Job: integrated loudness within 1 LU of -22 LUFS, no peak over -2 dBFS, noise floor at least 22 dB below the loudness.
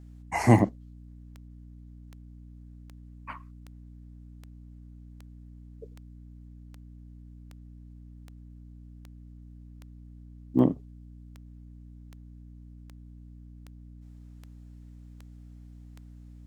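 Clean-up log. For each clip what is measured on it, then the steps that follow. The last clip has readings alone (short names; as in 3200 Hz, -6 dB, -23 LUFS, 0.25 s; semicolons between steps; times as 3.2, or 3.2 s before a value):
clicks 21; hum 60 Hz; harmonics up to 300 Hz; hum level -45 dBFS; loudness -26.5 LUFS; peak -6.5 dBFS; loudness target -22.0 LUFS
-> de-click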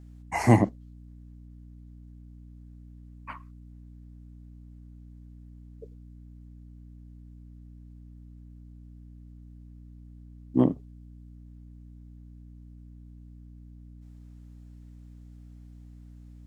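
clicks 0; hum 60 Hz; harmonics up to 300 Hz; hum level -45 dBFS
-> notches 60/120/180/240/300 Hz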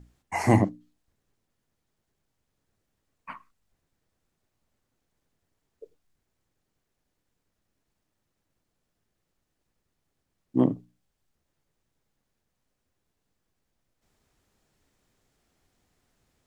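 hum none; loudness -25.5 LUFS; peak -8.5 dBFS; loudness target -22.0 LUFS
-> gain +3.5 dB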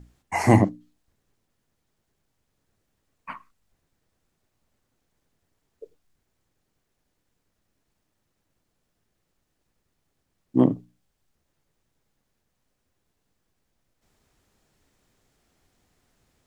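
loudness -22.5 LUFS; peak -5.0 dBFS; noise floor -77 dBFS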